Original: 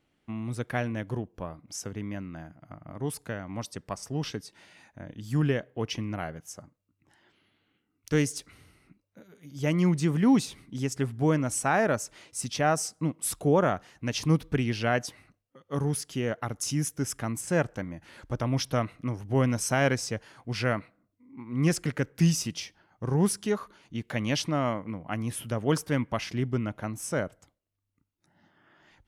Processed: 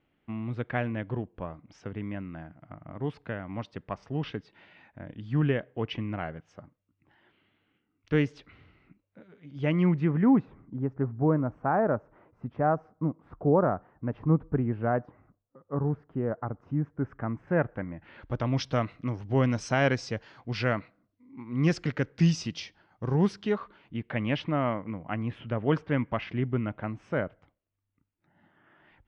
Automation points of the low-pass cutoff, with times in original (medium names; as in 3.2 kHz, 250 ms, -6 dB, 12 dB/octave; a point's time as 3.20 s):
low-pass 24 dB/octave
9.74 s 3.2 kHz
10.61 s 1.3 kHz
16.79 s 1.3 kHz
17.93 s 2.3 kHz
18.51 s 4.9 kHz
23.06 s 4.9 kHz
23.97 s 2.9 kHz